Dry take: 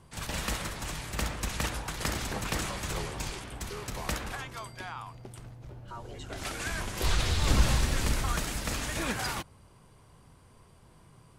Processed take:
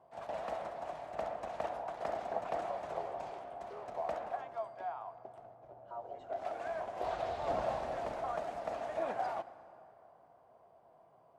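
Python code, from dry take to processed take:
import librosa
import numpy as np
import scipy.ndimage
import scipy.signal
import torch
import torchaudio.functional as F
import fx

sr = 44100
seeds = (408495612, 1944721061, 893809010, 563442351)

y = fx.bandpass_q(x, sr, hz=680.0, q=7.5)
y = fx.rev_plate(y, sr, seeds[0], rt60_s=3.0, hf_ratio=0.6, predelay_ms=0, drr_db=14.0)
y = F.gain(torch.from_numpy(y), 10.5).numpy()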